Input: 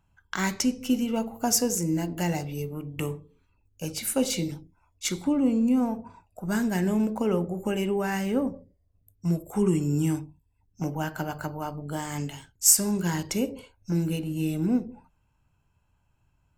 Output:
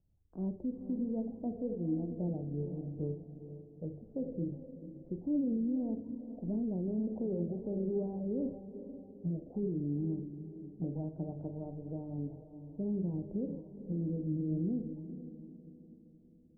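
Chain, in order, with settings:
Butterworth low-pass 600 Hz 36 dB per octave
dynamic equaliser 280 Hz, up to +3 dB, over −35 dBFS, Q 4.5
brickwall limiter −22 dBFS, peak gain reduction 10 dB
flanger 0.59 Hz, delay 1.8 ms, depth 5.2 ms, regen +87%
on a send: feedback delay with all-pass diffusion 468 ms, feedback 45%, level −11 dB
on the sum: level −1.5 dB

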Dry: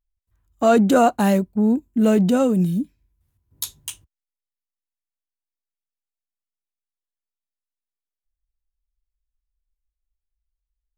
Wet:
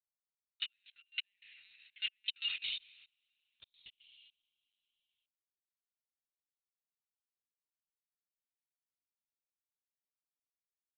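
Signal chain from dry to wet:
noise gate −54 dBFS, range −30 dB
Butterworth high-pass 2,200 Hz 48 dB per octave
in parallel at −8 dB: floating-point word with a short mantissa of 2 bits
on the sum: downward compressor 12 to 1, threshold −33 dBFS, peak gain reduction 14.5 dB
coupled-rooms reverb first 0.85 s, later 2.6 s, DRR 11 dB
gate with flip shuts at −27 dBFS, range −38 dB
output level in coarse steps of 24 dB
linear-prediction vocoder at 8 kHz pitch kept
level +17.5 dB

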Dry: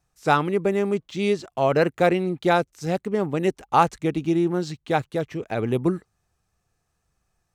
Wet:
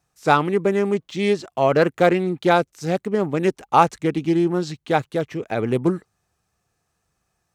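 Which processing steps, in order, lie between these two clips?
high-pass filter 110 Hz 6 dB per octave
highs frequency-modulated by the lows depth 0.13 ms
level +3 dB

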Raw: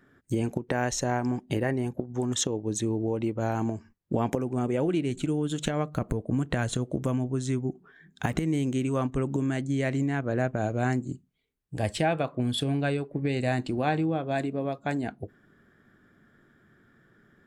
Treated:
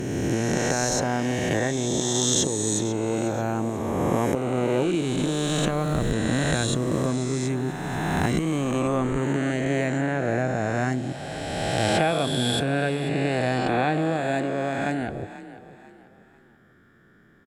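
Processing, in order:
peak hold with a rise ahead of every peak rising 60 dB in 2.56 s
echo with shifted repeats 491 ms, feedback 35%, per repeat +33 Hz, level −15 dB

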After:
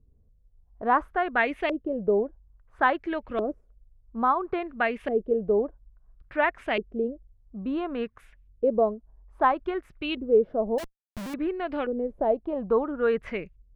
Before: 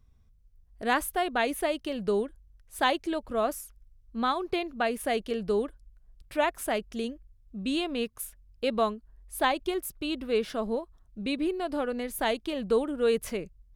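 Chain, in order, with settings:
auto-filter low-pass saw up 0.59 Hz 380–2,700 Hz
0:10.78–0:11.34: comparator with hysteresis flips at −42.5 dBFS

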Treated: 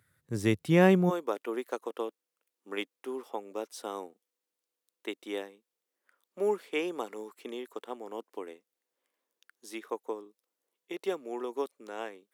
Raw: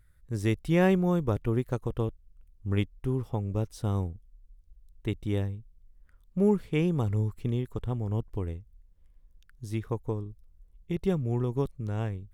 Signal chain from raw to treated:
Bessel high-pass filter 160 Hz, order 8, from 0:01.09 500 Hz
level +2.5 dB

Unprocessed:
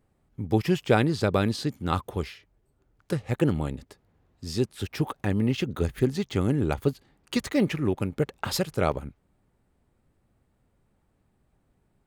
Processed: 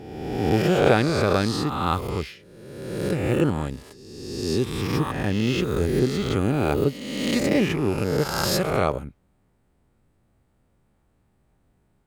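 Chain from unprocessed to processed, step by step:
peak hold with a rise ahead of every peak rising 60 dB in 1.41 s

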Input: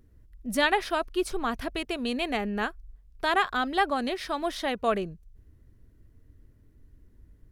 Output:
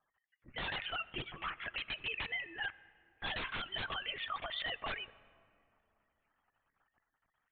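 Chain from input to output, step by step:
three sine waves on the formant tracks
Bessel high-pass filter 2,900 Hz, order 2
wrap-around overflow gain 34.5 dB
linear-prediction vocoder at 8 kHz whisper
brickwall limiter −38.5 dBFS, peak gain reduction 8.5 dB
on a send: convolution reverb RT60 2.9 s, pre-delay 3 ms, DRR 18 dB
on the sum: level +9 dB

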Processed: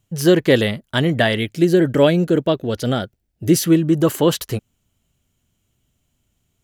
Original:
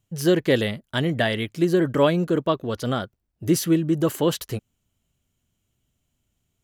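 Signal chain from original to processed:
0:01.38–0:03.64: parametric band 1,100 Hz −10.5 dB 0.44 octaves
level +5.5 dB

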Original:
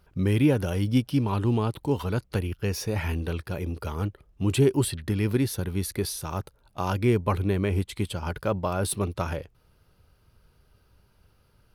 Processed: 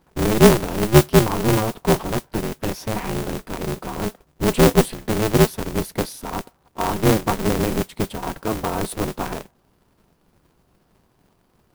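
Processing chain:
hollow resonant body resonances 270/830 Hz, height 16 dB, ringing for 30 ms
noise that follows the level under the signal 15 dB
on a send at −22 dB: convolution reverb RT60 0.60 s, pre-delay 3 ms
on the sum: ring modulator with a square carrier 110 Hz
level −3.5 dB

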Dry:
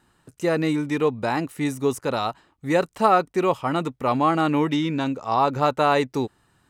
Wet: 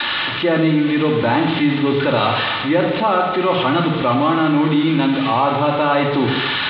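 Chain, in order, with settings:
spike at every zero crossing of −12.5 dBFS
Butterworth low-pass 3,800 Hz 72 dB per octave
noise gate with hold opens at −27 dBFS
speech leveller within 4 dB 0.5 s
on a send: feedback echo with a high-pass in the loop 78 ms, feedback 81%, high-pass 370 Hz, level −15.5 dB
on the sum: rectangular room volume 1,900 cubic metres, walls furnished, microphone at 2.5 metres
envelope flattener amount 50%

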